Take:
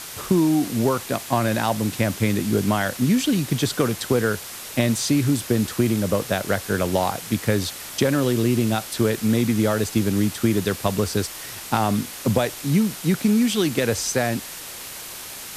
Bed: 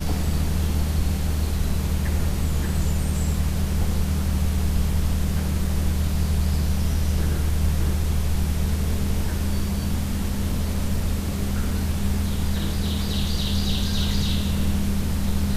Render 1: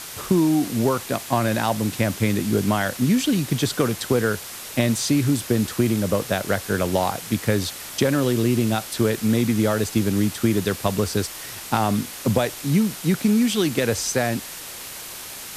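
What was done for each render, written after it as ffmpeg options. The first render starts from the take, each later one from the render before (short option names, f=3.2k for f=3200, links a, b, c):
-af anull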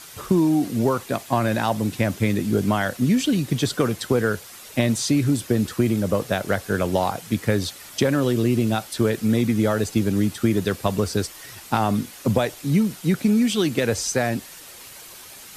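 -af "afftdn=nr=8:nf=-36"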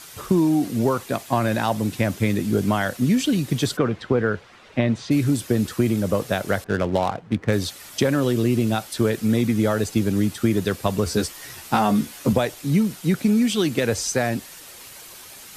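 -filter_complex "[0:a]asplit=3[a][b][c];[a]afade=t=out:st=3.76:d=0.02[d];[b]lowpass=2.6k,afade=t=in:st=3.76:d=0.02,afade=t=out:st=5.1:d=0.02[e];[c]afade=t=in:st=5.1:d=0.02[f];[d][e][f]amix=inputs=3:normalize=0,asettb=1/sr,asplit=3[g][h][i];[g]atrim=end=6.644[j];[h]atrim=start=6.64:end=7.53,asetpts=PTS-STARTPTS,afade=t=in:d=0.004:c=qsin,afade=t=out:st=0.886:d=0.004:c=qsin,adynamicsmooth=sensitivity=3.5:basefreq=820[k];[i]atrim=start=7.526[l];[j][k]acrossfade=d=0.004:c1=hsin:c2=qsin[m];[m][l]acrossfade=d=0.004:c1=qsin:c2=hsin,asettb=1/sr,asplit=3[n][o][p];[n]atrim=end=11.054[q];[o]atrim=start=11.05:end=12.33,asetpts=PTS-STARTPTS,afade=t=in:d=0.004:c=qsin,afade=t=out:st=1.276:d=0.004:c=qsin,asplit=2[r][s];[s]adelay=14,volume=-3dB[t];[r][t]amix=inputs=2:normalize=0,atrim=end_sample=56448[u];[p]atrim=start=12.326[v];[q][u]acrossfade=d=0.004:c1=hsin:c2=qsin[w];[w][v]acrossfade=d=0.004:c1=qsin:c2=hsin"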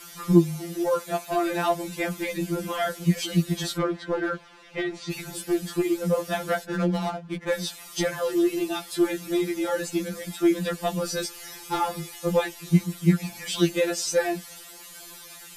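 -af "volume=11dB,asoftclip=hard,volume=-11dB,afftfilt=real='re*2.83*eq(mod(b,8),0)':imag='im*2.83*eq(mod(b,8),0)':win_size=2048:overlap=0.75"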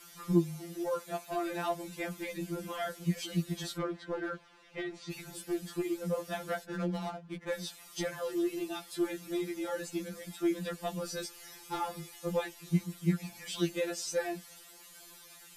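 -af "volume=-9.5dB"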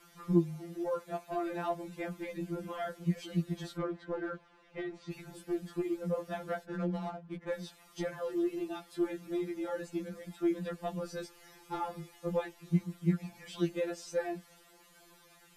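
-af "highshelf=f=2.6k:g=-12"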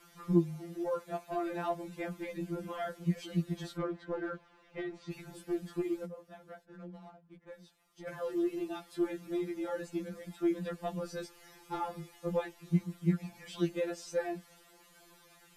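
-filter_complex "[0:a]asplit=3[a][b][c];[a]atrim=end=6.19,asetpts=PTS-STARTPTS,afade=t=out:st=6.05:d=0.14:c=exp:silence=0.211349[d];[b]atrim=start=6.19:end=7.94,asetpts=PTS-STARTPTS,volume=-13.5dB[e];[c]atrim=start=7.94,asetpts=PTS-STARTPTS,afade=t=in:d=0.14:c=exp:silence=0.211349[f];[d][e][f]concat=n=3:v=0:a=1"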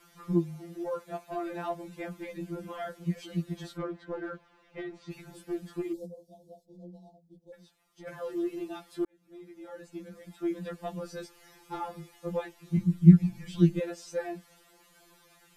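-filter_complex "[0:a]asplit=3[a][b][c];[a]afade=t=out:st=5.92:d=0.02[d];[b]asuperstop=centerf=1700:order=8:qfactor=0.52,afade=t=in:st=5.92:d=0.02,afade=t=out:st=7.52:d=0.02[e];[c]afade=t=in:st=7.52:d=0.02[f];[d][e][f]amix=inputs=3:normalize=0,asplit=3[g][h][i];[g]afade=t=out:st=12.77:d=0.02[j];[h]asubboost=boost=11.5:cutoff=180,afade=t=in:st=12.77:d=0.02,afade=t=out:st=13.79:d=0.02[k];[i]afade=t=in:st=13.79:d=0.02[l];[j][k][l]amix=inputs=3:normalize=0,asplit=2[m][n];[m]atrim=end=9.05,asetpts=PTS-STARTPTS,afade=t=out:st=9.046:d=0.004:c=hsin[o];[n]atrim=start=9.05,asetpts=PTS-STARTPTS,afade=t=in:d=1.64[p];[o][p]concat=n=2:v=0:a=1"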